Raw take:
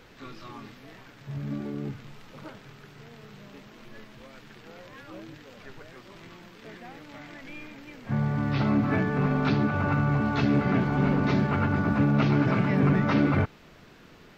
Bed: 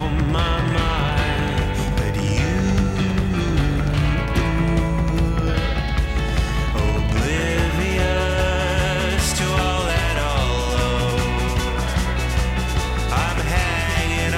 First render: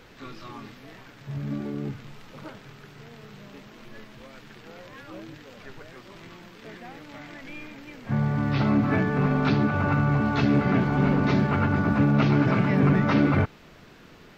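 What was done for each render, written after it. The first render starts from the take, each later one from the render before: gain +2 dB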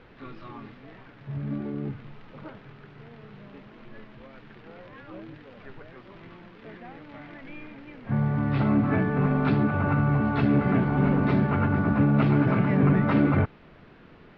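air absorption 330 m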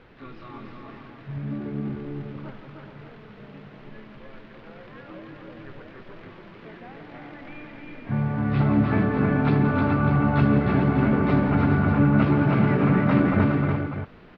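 tapped delay 0.17/0.306/0.417/0.595 s -11/-4/-8/-9 dB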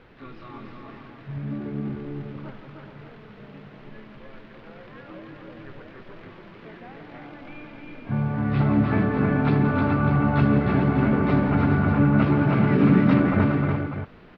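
7.25–8.33 notch 1900 Hz, Q 7.2; 12.72–13.14 EQ curve 130 Hz 0 dB, 250 Hz +6 dB, 700 Hz -3 dB, 2100 Hz 0 dB, 3900 Hz +5 dB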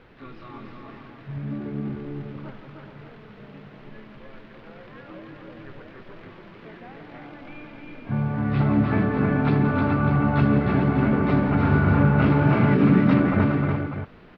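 11.61–12.74 doubler 40 ms -2 dB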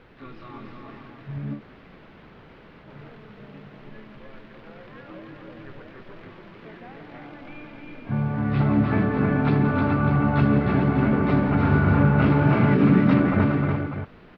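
1.57–2.86 room tone, crossfade 0.10 s

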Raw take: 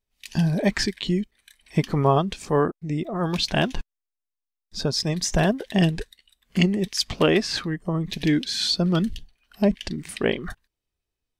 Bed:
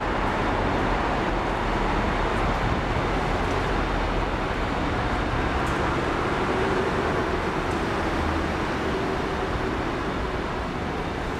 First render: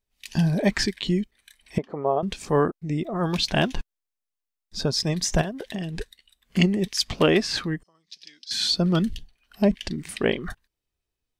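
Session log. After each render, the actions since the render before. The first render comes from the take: 1.78–2.23 band-pass 580 Hz, Q 1.8; 5.41–6 compressor 16:1, threshold -26 dBFS; 7.83–8.51 band-pass 5100 Hz, Q 5.9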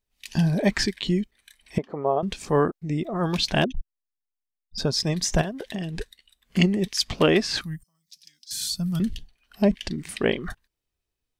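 3.64–4.78 formant sharpening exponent 3; 7.61–9 EQ curve 140 Hz 0 dB, 220 Hz -8 dB, 420 Hz -28 dB, 640 Hz -16 dB, 2000 Hz -12 dB, 4000 Hz -9 dB, 12000 Hz +14 dB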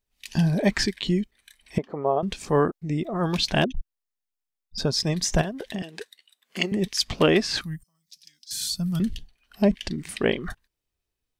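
5.82–6.72 HPF 400 Hz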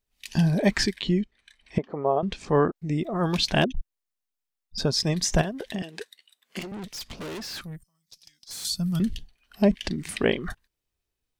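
1.02–2.76 air absorption 87 m; 6.59–8.65 tube stage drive 34 dB, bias 0.4; 9.84–10.24 three-band squash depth 70%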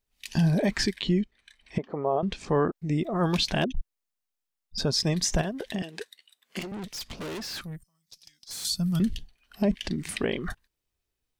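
limiter -15.5 dBFS, peak gain reduction 8 dB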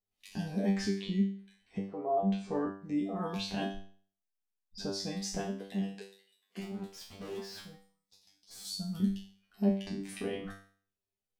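resonator 98 Hz, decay 0.46 s, harmonics all, mix 100%; small resonant body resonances 230/430/730 Hz, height 10 dB, ringing for 45 ms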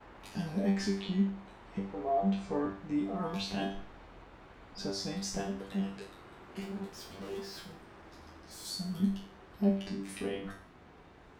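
add bed -28 dB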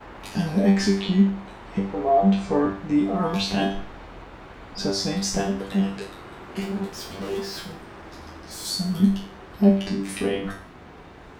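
gain +11.5 dB

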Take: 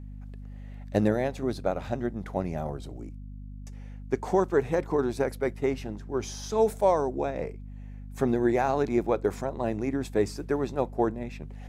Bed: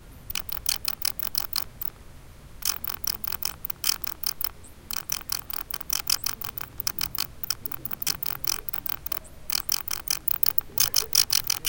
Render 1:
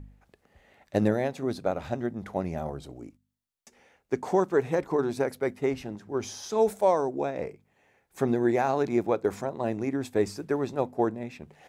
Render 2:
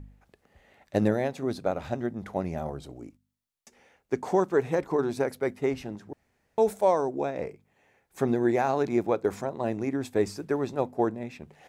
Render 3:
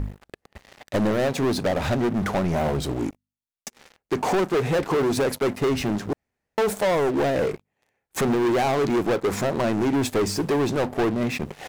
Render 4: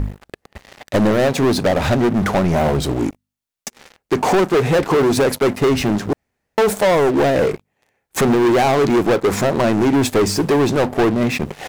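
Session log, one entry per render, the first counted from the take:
de-hum 50 Hz, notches 5
6.13–6.58 room tone
compressor 2:1, threshold -33 dBFS, peak gain reduction 9 dB; sample leveller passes 5
gain +7 dB

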